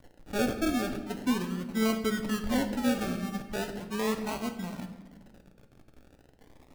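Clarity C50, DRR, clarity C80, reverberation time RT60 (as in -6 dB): 9.5 dB, 5.5 dB, 11.5 dB, 1.2 s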